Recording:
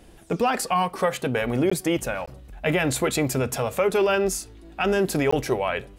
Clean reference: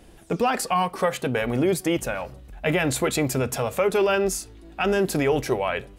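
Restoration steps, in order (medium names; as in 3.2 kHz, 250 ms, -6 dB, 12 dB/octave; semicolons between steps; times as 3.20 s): interpolate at 1.70/2.26/5.31 s, 15 ms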